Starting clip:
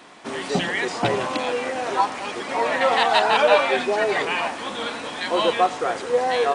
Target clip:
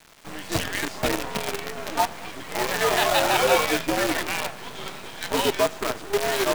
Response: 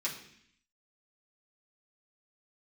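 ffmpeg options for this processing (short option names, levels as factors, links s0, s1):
-filter_complex "[0:a]asplit=2[s0][s1];[1:a]atrim=start_sample=2205[s2];[s1][s2]afir=irnorm=-1:irlink=0,volume=0.141[s3];[s0][s3]amix=inputs=2:normalize=0,afreqshift=-86,acrusher=bits=4:dc=4:mix=0:aa=0.000001,volume=0.668"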